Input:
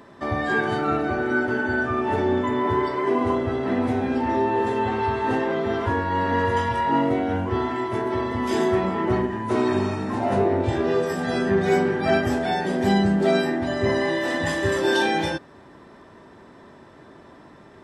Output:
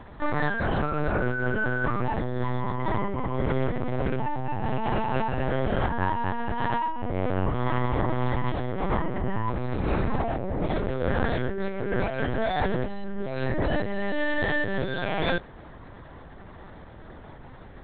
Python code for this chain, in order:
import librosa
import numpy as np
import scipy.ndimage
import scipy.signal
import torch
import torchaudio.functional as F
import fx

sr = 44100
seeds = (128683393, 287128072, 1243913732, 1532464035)

y = fx.over_compress(x, sr, threshold_db=-26.0, ratio=-1.0)
y = fx.lpc_vocoder(y, sr, seeds[0], excitation='pitch_kept', order=8)